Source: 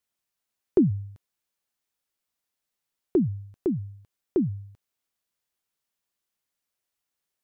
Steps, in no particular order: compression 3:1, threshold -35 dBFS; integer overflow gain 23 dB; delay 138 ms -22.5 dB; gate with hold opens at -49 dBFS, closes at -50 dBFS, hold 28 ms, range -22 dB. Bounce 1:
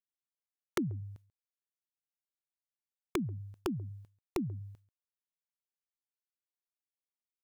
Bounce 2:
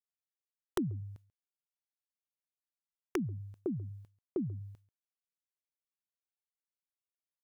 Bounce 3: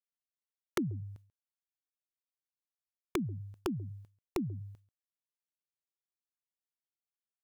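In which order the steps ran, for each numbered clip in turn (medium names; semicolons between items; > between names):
gate with hold > compression > delay > integer overflow; compression > gate with hold > delay > integer overflow; gate with hold > delay > compression > integer overflow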